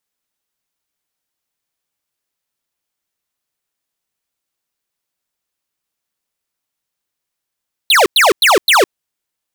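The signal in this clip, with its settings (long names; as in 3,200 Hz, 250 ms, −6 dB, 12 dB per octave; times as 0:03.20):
repeated falling chirps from 4,400 Hz, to 330 Hz, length 0.16 s square, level −9 dB, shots 4, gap 0.10 s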